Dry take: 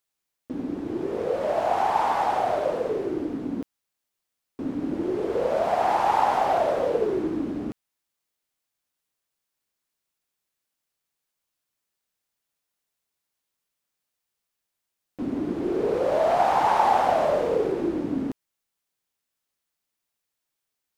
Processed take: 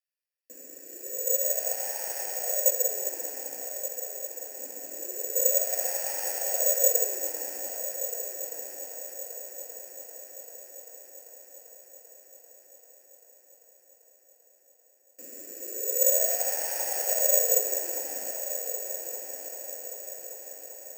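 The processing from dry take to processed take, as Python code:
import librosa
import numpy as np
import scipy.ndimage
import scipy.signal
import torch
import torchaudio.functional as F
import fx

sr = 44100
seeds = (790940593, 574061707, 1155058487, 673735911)

p1 = fx.vowel_filter(x, sr, vowel='e')
p2 = fx.tilt_shelf(p1, sr, db=-8.0, hz=650.0)
p3 = fx.notch(p2, sr, hz=3300.0, q=24.0)
p4 = p3 + fx.echo_heads(p3, sr, ms=392, heads='first and third', feedback_pct=68, wet_db=-9.0, dry=0)
p5 = (np.kron(scipy.signal.resample_poly(p4, 1, 6), np.eye(6)[0]) * 6)[:len(p4)]
y = fx.upward_expand(p5, sr, threshold_db=-26.0, expansion=1.5)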